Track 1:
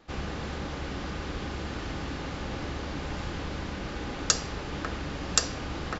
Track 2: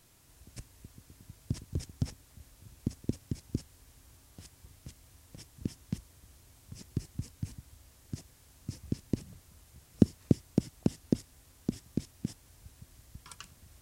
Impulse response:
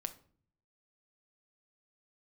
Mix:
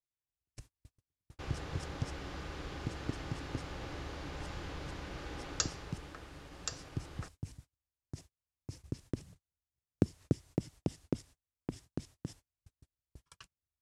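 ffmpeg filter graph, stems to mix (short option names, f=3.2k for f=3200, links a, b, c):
-filter_complex "[0:a]adelay=1300,volume=-8dB,afade=t=out:st=5.42:d=0.73:silence=0.421697[a];[1:a]lowpass=9.8k,volume=-4dB[b];[a][b]amix=inputs=2:normalize=0,agate=range=-36dB:threshold=-51dB:ratio=16:detection=peak,equalizer=f=220:w=6.7:g=-14"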